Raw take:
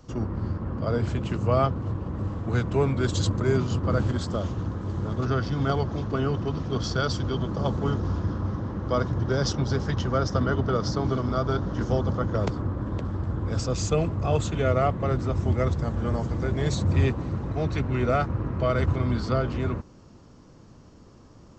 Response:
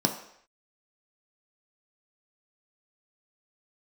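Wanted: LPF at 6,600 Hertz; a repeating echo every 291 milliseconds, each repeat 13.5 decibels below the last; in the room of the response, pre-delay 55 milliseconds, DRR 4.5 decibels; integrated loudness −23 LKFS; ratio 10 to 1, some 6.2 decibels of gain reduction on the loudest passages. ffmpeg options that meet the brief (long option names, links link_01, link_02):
-filter_complex "[0:a]lowpass=6600,acompressor=threshold=-24dB:ratio=10,aecho=1:1:291|582:0.211|0.0444,asplit=2[link_01][link_02];[1:a]atrim=start_sample=2205,adelay=55[link_03];[link_02][link_03]afir=irnorm=-1:irlink=0,volume=-14.5dB[link_04];[link_01][link_04]amix=inputs=2:normalize=0,volume=3.5dB"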